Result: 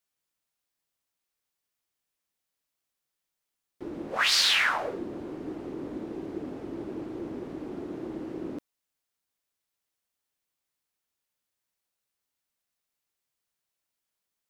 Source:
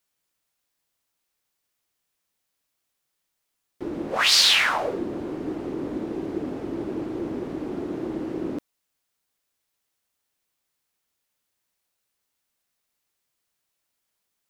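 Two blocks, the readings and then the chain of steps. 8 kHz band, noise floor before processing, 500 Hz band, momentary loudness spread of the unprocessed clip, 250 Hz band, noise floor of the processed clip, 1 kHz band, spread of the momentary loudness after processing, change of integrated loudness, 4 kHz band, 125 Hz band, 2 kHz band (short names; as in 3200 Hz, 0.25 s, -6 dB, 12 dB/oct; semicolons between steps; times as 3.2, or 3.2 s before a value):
-6.5 dB, -79 dBFS, -6.5 dB, 16 LU, -6.5 dB, -85 dBFS, -4.0 dB, 17 LU, -5.0 dB, -6.0 dB, -6.5 dB, -3.0 dB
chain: dynamic EQ 1600 Hz, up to +5 dB, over -35 dBFS, Q 1.3; gain -6.5 dB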